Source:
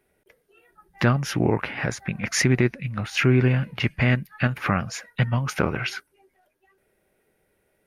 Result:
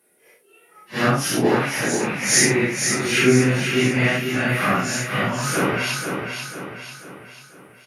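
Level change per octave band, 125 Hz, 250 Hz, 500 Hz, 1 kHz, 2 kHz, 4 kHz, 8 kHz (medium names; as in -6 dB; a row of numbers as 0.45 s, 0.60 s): -2.0 dB, +4.0 dB, +6.0 dB, +6.0 dB, +6.0 dB, +7.5 dB, +12.0 dB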